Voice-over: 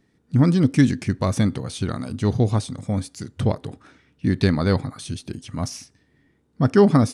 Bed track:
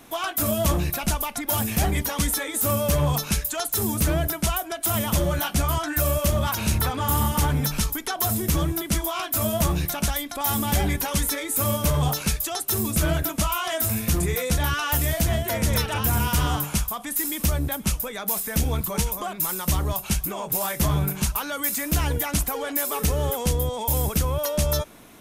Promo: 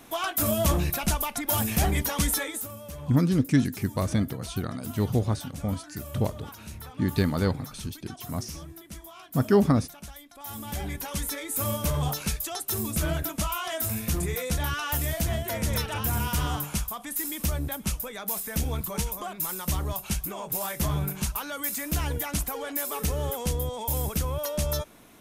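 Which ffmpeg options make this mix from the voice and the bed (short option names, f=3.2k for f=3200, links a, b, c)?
-filter_complex "[0:a]adelay=2750,volume=-5.5dB[a];[1:a]volume=12dB,afade=t=out:st=2.43:d=0.25:silence=0.141254,afade=t=in:st=10.32:d=1.25:silence=0.211349[b];[a][b]amix=inputs=2:normalize=0"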